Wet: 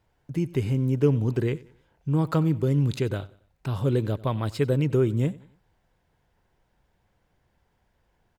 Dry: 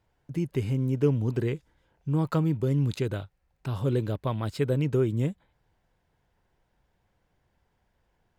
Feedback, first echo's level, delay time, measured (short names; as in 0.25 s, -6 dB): 38%, -21.0 dB, 93 ms